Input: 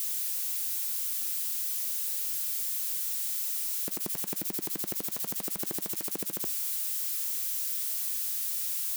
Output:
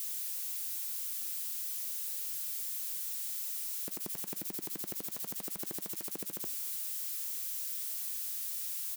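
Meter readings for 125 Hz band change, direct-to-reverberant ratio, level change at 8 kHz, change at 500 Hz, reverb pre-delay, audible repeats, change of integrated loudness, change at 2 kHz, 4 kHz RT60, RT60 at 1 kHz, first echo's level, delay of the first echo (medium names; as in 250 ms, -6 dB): -6.0 dB, no reverb, -6.0 dB, -6.0 dB, no reverb, 1, -6.0 dB, -6.0 dB, no reverb, no reverb, -21.5 dB, 307 ms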